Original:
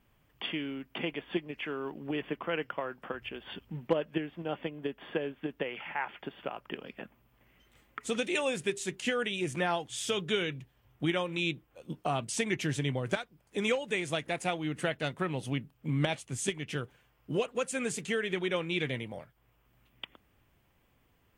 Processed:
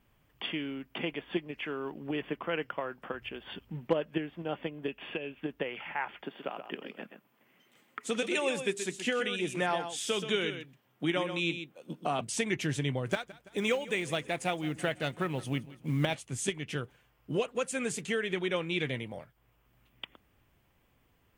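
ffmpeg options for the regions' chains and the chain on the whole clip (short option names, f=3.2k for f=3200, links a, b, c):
-filter_complex "[0:a]asettb=1/sr,asplit=3[a][b][c];[a]atrim=end=4.884[d];[b]atrim=start=4.88:end=5.41,asetpts=PTS-STARTPTS,afade=t=in:d=0.004:c=qsin,afade=t=out:st=0.526:d=0.004:c=qsin,equalizer=f=2.6k:w=3.7:g=14,acrossover=split=930|2800[e][f][g];[e]acompressor=threshold=-35dB:ratio=4[h];[f]acompressor=threshold=-45dB:ratio=4[i];[g]acompressor=threshold=-45dB:ratio=4[j];[h][i][j]amix=inputs=3:normalize=0[k];[c]atrim=start=5.406[l];[d][k]acrossfade=d=0.004:c1=hsin:c2=qsin[m];[m][l]acrossfade=d=0.004:c1=qsin:c2=hsin,asettb=1/sr,asplit=3[n][o][p];[n]atrim=end=6.224[q];[o]atrim=start=6.22:end=12.21,asetpts=PTS-STARTPTS,afade=t=in:d=0.004:c=qsin,afade=t=out:st=5.986:d=0.004:c=qsin,highpass=f=160:w=0.5412,highpass=f=160:w=1.3066,aecho=1:1:128:0.355,atrim=end_sample=264159[r];[p]atrim=start=12.206[s];[q][r]acrossfade=d=0.004:c1=hsin:c2=qsin[t];[t][s]acrossfade=d=0.004:c1=qsin:c2=hsin,asettb=1/sr,asplit=3[u][v][w];[u]atrim=end=13.104[x];[v]atrim=start=13.1:end=16.14,asetpts=PTS-STARTPTS,afade=t=in:d=0.004:c=qsin,afade=t=out:st=3.036:d=0.004:c=qsin,acrusher=bits=8:mode=log:mix=0:aa=0.000001,aecho=1:1:167|334|501|668:0.112|0.0595|0.0315|0.0167,atrim=end_sample=134064[y];[w]atrim=start=16.136[z];[x][y]acrossfade=d=0.004:c1=hsin:c2=qsin[aa];[aa][z]acrossfade=d=0.004:c1=qsin:c2=hsin"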